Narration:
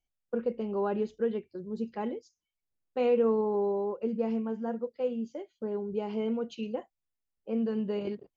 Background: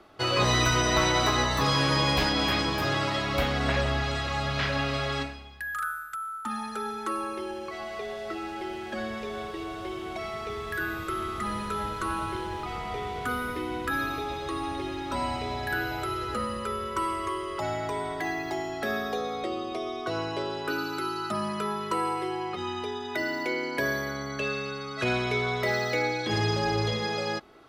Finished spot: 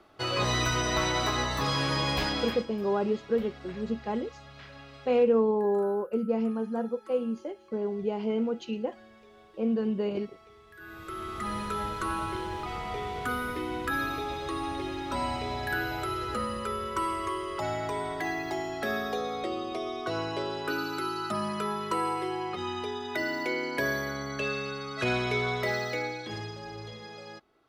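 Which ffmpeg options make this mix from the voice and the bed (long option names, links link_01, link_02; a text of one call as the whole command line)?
ffmpeg -i stem1.wav -i stem2.wav -filter_complex "[0:a]adelay=2100,volume=2.5dB[link_01];[1:a]volume=15dB,afade=type=out:start_time=2.33:duration=0.33:silence=0.158489,afade=type=in:start_time=10.77:duration=0.81:silence=0.112202,afade=type=out:start_time=25.48:duration=1.05:silence=0.211349[link_02];[link_01][link_02]amix=inputs=2:normalize=0" out.wav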